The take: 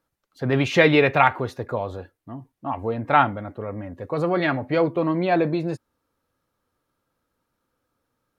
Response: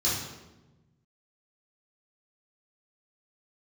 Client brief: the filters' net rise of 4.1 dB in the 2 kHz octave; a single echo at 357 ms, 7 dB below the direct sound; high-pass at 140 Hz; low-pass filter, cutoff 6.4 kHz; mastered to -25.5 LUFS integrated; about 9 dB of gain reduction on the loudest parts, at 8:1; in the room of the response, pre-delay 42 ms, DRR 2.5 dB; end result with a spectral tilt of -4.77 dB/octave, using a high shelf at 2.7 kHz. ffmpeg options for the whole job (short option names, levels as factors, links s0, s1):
-filter_complex "[0:a]highpass=140,lowpass=6400,equalizer=f=2000:t=o:g=3,highshelf=f=2700:g=5,acompressor=threshold=0.126:ratio=8,aecho=1:1:357:0.447,asplit=2[s0][s1];[1:a]atrim=start_sample=2205,adelay=42[s2];[s1][s2]afir=irnorm=-1:irlink=0,volume=0.237[s3];[s0][s3]amix=inputs=2:normalize=0,volume=0.708"